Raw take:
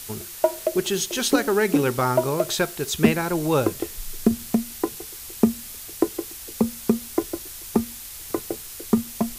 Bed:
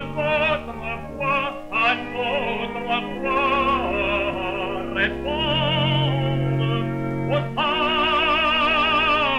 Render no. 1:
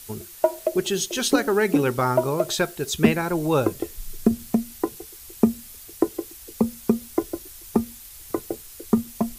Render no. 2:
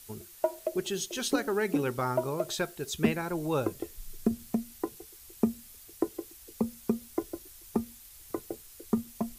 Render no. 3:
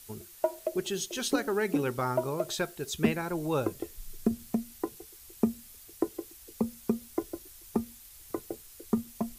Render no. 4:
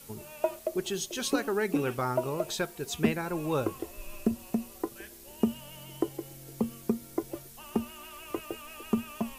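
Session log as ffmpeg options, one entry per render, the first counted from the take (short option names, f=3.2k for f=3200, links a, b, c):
-af "afftdn=nr=7:nf=-38"
-af "volume=-8.5dB"
-af anull
-filter_complex "[1:a]volume=-28dB[a];[0:a][a]amix=inputs=2:normalize=0"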